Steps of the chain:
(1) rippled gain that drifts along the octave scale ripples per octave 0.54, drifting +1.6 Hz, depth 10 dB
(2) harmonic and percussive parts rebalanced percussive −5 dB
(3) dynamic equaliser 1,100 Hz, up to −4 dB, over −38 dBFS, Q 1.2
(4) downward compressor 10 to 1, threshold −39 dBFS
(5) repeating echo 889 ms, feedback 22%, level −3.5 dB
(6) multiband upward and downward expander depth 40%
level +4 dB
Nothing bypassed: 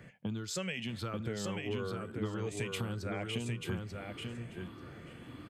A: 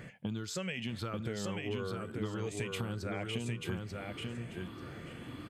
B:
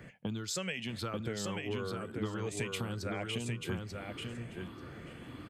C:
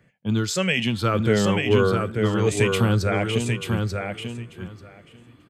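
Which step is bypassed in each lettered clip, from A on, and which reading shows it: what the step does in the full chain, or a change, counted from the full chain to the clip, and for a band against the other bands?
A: 6, change in momentary loudness spread −2 LU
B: 2, 8 kHz band +2.0 dB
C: 4, change in momentary loudness spread +5 LU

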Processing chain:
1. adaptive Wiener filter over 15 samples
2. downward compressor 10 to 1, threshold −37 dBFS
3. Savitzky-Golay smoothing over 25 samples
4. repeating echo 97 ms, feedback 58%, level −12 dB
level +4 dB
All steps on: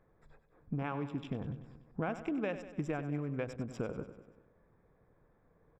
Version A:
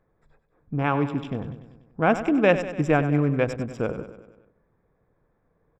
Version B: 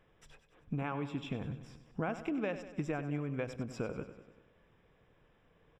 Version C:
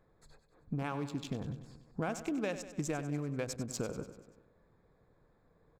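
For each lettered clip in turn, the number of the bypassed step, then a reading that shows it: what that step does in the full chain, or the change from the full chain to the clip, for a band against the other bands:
2, average gain reduction 11.5 dB
1, 4 kHz band +3.5 dB
3, 4 kHz band +7.5 dB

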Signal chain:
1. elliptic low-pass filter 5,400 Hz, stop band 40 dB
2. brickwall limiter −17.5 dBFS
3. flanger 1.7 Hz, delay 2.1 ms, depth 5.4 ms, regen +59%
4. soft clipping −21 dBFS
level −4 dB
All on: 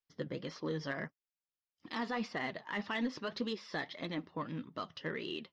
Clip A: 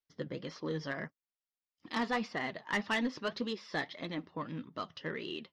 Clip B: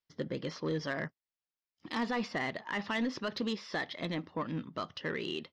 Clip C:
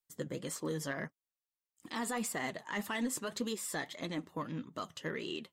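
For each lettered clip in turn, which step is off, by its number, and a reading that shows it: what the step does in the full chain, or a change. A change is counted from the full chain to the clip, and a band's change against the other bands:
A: 2, change in momentary loudness spread +3 LU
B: 3, change in crest factor −3.0 dB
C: 1, change in integrated loudness +1.0 LU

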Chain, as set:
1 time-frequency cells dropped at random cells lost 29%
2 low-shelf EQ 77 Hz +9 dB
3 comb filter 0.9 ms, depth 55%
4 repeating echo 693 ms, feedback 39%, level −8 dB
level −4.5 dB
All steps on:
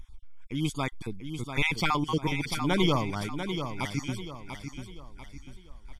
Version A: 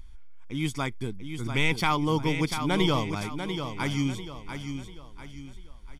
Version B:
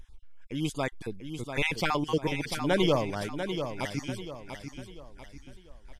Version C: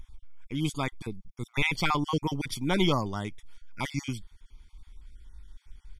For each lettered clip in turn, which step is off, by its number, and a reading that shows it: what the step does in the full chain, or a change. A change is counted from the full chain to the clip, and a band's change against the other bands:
1, change in integrated loudness +1.5 LU
3, 500 Hz band +5.5 dB
4, change in momentary loudness spread −6 LU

